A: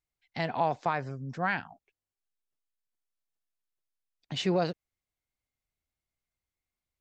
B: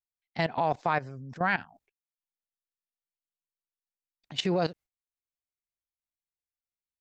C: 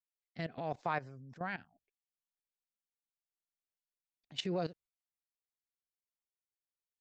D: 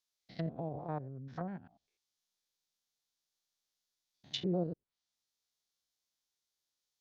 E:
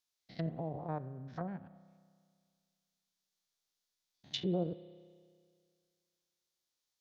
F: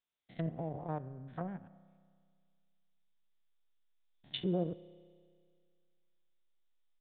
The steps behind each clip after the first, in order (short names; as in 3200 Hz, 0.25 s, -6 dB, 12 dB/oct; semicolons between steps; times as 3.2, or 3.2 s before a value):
gate with hold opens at -53 dBFS; level quantiser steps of 16 dB; gain +6.5 dB
rotary speaker horn 0.75 Hz, later 6.7 Hz, at 3.7; gain -7.5 dB
stepped spectrum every 0.1 s; treble ducked by the level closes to 490 Hz, closed at -39.5 dBFS; band shelf 4700 Hz +9.5 dB 1.2 oct; gain +5.5 dB
spring tank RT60 2 s, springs 31 ms, chirp 65 ms, DRR 15.5 dB
in parallel at -11 dB: backlash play -36 dBFS; on the sum: downsampling 8000 Hz; gain -1.5 dB